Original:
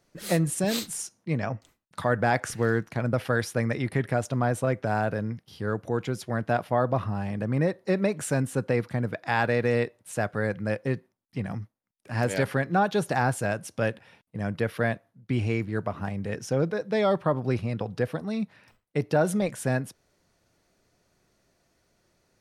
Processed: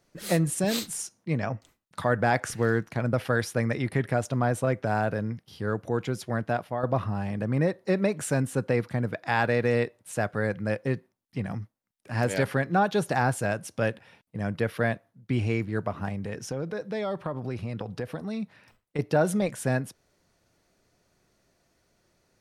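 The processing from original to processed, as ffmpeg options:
ffmpeg -i in.wav -filter_complex "[0:a]asettb=1/sr,asplit=3[link_01][link_02][link_03];[link_01]atrim=end=16.154[link_04];[link_02]atrim=start=16.15:end=18.99,asetpts=PTS-STARTPTS,afade=type=in:duration=0.004:curve=qsin,afade=type=out:start_time=2.836:duration=0.004:curve=qsin,acompressor=threshold=-29dB:ratio=3:attack=3.2:release=140:knee=1:detection=peak[link_05];[link_03]atrim=start=18.986[link_06];[link_04][link_05]acrossfade=duration=0.004:curve1=hsin:curve2=qsin[link_07];[link_07][link_06]acrossfade=duration=0.004:curve1=qsin:curve2=hsin,asplit=2[link_08][link_09];[link_08]atrim=end=6.83,asetpts=PTS-STARTPTS,afade=type=out:start_time=6.35:duration=0.48:silence=0.375837[link_10];[link_09]atrim=start=6.83,asetpts=PTS-STARTPTS,afade=type=in:duration=0.004:curve=hsin:silence=0.375837[link_11];[link_10][link_11]concat=n=2:v=0:a=1" out.wav

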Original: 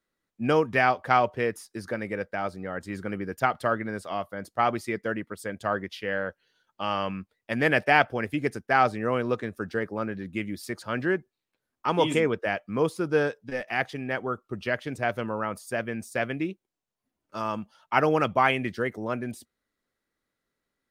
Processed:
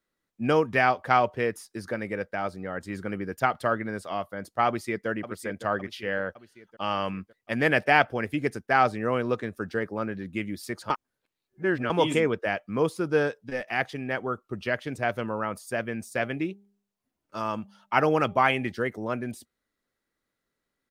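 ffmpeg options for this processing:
ffmpeg -i in.wav -filter_complex "[0:a]asplit=2[link_01][link_02];[link_02]afade=type=in:start_time=4.67:duration=0.01,afade=type=out:start_time=5.08:duration=0.01,aecho=0:1:560|1120|1680|2240|2800|3360:0.281838|0.155011|0.0852561|0.0468908|0.02579|0.0141845[link_03];[link_01][link_03]amix=inputs=2:normalize=0,asettb=1/sr,asplit=3[link_04][link_05][link_06];[link_04]atrim=end=16.024[link_07];[link_05]atrim=start=16.02:end=18.72,asetpts=PTS-STARTPTS,afade=type=in:duration=0.004:curve=qsin,afade=type=out:start_time=2.696:duration=0.004:curve=qsin,bandreject=frequency=200.7:width_type=h:width=4,bandreject=frequency=401.4:width_type=h:width=4,bandreject=frequency=602.1:width_type=h:width=4,bandreject=frequency=802.8:width_type=h:width=4[link_08];[link_06]atrim=start=18.716[link_09];[link_07][link_08]acrossfade=duration=0.004:curve1=hsin:curve2=qsin[link_10];[link_10][link_09]acrossfade=duration=0.004:curve1=qsin:curve2=hsin,asplit=3[link_11][link_12][link_13];[link_11]atrim=end=10.902[link_14];[link_12]atrim=start=10.898:end=11.902,asetpts=PTS-STARTPTS,areverse[link_15];[link_13]atrim=start=11.898[link_16];[link_14][link_15]acrossfade=duration=0.004:curve1=hsin:curve2=hsin[link_17];[link_17][link_16]acrossfade=duration=0.004:curve1=hsin:curve2=hsin" out.wav

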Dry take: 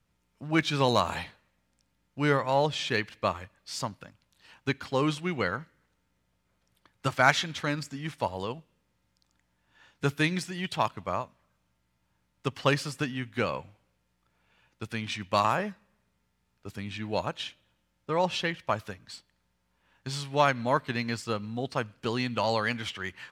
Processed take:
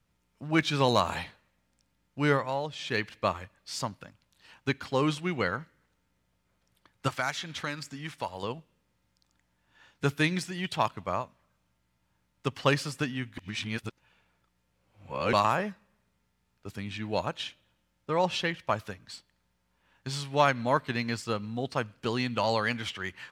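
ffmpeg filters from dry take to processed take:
ffmpeg -i in.wav -filter_complex "[0:a]asettb=1/sr,asplit=3[link_01][link_02][link_03];[link_01]atrim=end=7.084[link_04];[link_02]atrim=start=7.08:end=8.43,asetpts=PTS-STARTPTS,afade=type=in:duration=0.004:curve=qsin,afade=type=out:start_time=1.346:duration=0.004:curve=qsin,acrossover=split=820|4700[link_05][link_06][link_07];[link_05]acompressor=threshold=-38dB:ratio=4[link_08];[link_06]acompressor=threshold=-31dB:ratio=4[link_09];[link_07]acompressor=threshold=-42dB:ratio=4[link_10];[link_08][link_09][link_10]amix=inputs=3:normalize=0[link_11];[link_03]atrim=start=8.426[link_12];[link_04][link_11]acrossfade=duration=0.004:curve1=hsin:curve2=qsin[link_13];[link_13][link_12]acrossfade=duration=0.004:curve1=qsin:curve2=hsin,asplit=5[link_14][link_15][link_16][link_17][link_18];[link_14]atrim=end=2.6,asetpts=PTS-STARTPTS,afade=type=out:start_time=2.33:duration=0.27:silence=0.375837[link_19];[link_15]atrim=start=2.6:end=2.76,asetpts=PTS-STARTPTS,volume=-8.5dB[link_20];[link_16]atrim=start=2.76:end=13.382,asetpts=PTS-STARTPTS,afade=type=in:duration=0.27:silence=0.375837[link_21];[link_17]atrim=start=13.378:end=15.332,asetpts=PTS-STARTPTS,areverse[link_22];[link_18]atrim=start=15.328[link_23];[link_19][link_20][link_21]concat=n=3:v=0:a=1[link_24];[link_24][link_22]acrossfade=duration=0.004:curve1=hsin:curve2=hsin[link_25];[link_25][link_23]acrossfade=duration=0.004:curve1=hsin:curve2=hsin" out.wav

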